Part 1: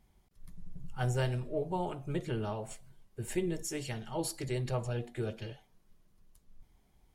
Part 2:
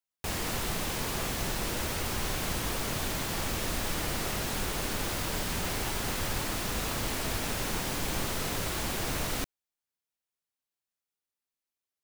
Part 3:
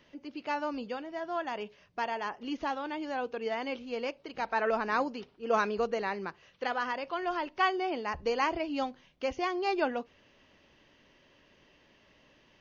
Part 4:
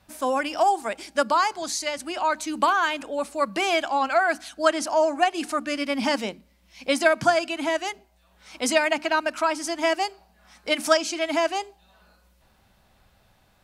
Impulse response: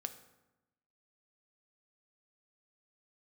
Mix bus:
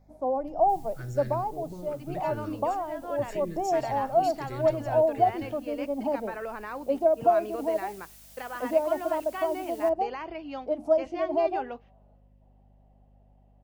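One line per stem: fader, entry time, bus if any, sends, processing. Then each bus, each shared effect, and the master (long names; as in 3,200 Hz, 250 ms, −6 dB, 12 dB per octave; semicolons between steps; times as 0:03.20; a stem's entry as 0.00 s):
−0.5 dB, 0.00 s, no send, brickwall limiter −27.5 dBFS, peak gain reduction 7.5 dB; phaser with its sweep stopped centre 3,000 Hz, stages 6
−16.5 dB, 0.45 s, no send, first difference; automatic ducking −9 dB, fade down 1.15 s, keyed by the first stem
−3.5 dB, 1.75 s, no send, noise gate −49 dBFS, range −21 dB; bass and treble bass −4 dB, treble −10 dB; brickwall limiter −23.5 dBFS, peak gain reduction 8 dB
−8.0 dB, 0.00 s, no send, drawn EQ curve 180 Hz 0 dB, 740 Hz +8 dB, 1,700 Hz −27 dB; mains hum 50 Hz, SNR 30 dB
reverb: not used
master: no processing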